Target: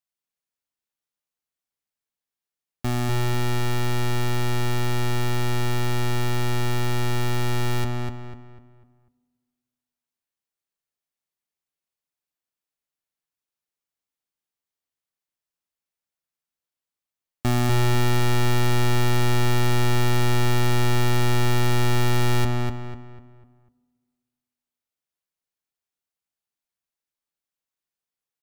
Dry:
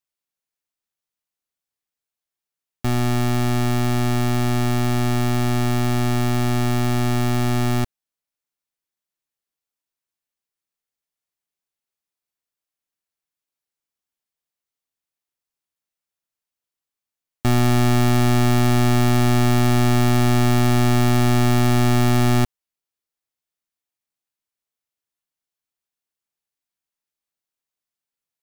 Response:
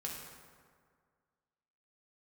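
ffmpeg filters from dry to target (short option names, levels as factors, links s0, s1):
-filter_complex "[0:a]asplit=2[s0][s1];[s1]adelay=248,lowpass=f=2800:p=1,volume=0.708,asplit=2[s2][s3];[s3]adelay=248,lowpass=f=2800:p=1,volume=0.37,asplit=2[s4][s5];[s5]adelay=248,lowpass=f=2800:p=1,volume=0.37,asplit=2[s6][s7];[s7]adelay=248,lowpass=f=2800:p=1,volume=0.37,asplit=2[s8][s9];[s9]adelay=248,lowpass=f=2800:p=1,volume=0.37[s10];[s0][s2][s4][s6][s8][s10]amix=inputs=6:normalize=0,asplit=2[s11][s12];[1:a]atrim=start_sample=2205[s13];[s12][s13]afir=irnorm=-1:irlink=0,volume=0.188[s14];[s11][s14]amix=inputs=2:normalize=0,volume=0.596"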